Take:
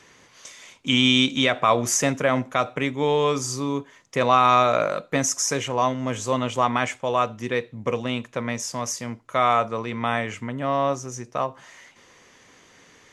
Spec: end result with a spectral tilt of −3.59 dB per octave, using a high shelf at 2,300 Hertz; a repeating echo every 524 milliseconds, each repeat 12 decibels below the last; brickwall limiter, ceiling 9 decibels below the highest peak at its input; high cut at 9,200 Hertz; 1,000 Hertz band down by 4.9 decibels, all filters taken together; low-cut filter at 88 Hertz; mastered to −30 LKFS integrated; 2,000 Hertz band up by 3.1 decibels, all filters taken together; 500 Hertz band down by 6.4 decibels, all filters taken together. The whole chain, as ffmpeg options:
ffmpeg -i in.wav -af "highpass=88,lowpass=9200,equalizer=frequency=500:width_type=o:gain=-6,equalizer=frequency=1000:width_type=o:gain=-6.5,equalizer=frequency=2000:width_type=o:gain=8,highshelf=frequency=2300:gain=-4.5,alimiter=limit=-14.5dB:level=0:latency=1,aecho=1:1:524|1048|1572:0.251|0.0628|0.0157,volume=-2dB" out.wav

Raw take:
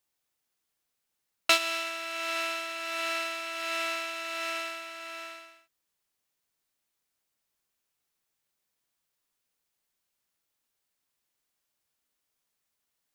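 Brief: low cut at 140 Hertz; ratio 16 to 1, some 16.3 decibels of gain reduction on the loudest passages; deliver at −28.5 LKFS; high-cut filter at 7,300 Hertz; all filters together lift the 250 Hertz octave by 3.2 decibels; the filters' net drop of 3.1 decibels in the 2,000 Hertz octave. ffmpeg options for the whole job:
ffmpeg -i in.wav -af "highpass=140,lowpass=7300,equalizer=frequency=250:width_type=o:gain=5.5,equalizer=frequency=2000:width_type=o:gain=-4.5,acompressor=threshold=-35dB:ratio=16,volume=10.5dB" out.wav

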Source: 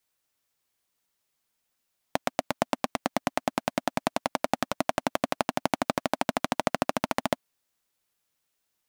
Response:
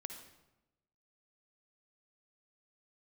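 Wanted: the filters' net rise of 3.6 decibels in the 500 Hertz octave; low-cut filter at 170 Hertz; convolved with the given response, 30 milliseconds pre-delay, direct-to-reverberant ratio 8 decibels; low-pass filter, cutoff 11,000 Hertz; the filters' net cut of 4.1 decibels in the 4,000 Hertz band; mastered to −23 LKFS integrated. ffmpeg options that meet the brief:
-filter_complex "[0:a]highpass=170,lowpass=11000,equalizer=frequency=500:width_type=o:gain=5,equalizer=frequency=4000:width_type=o:gain=-5.5,asplit=2[link_01][link_02];[1:a]atrim=start_sample=2205,adelay=30[link_03];[link_02][link_03]afir=irnorm=-1:irlink=0,volume=-5dB[link_04];[link_01][link_04]amix=inputs=2:normalize=0,volume=5dB"

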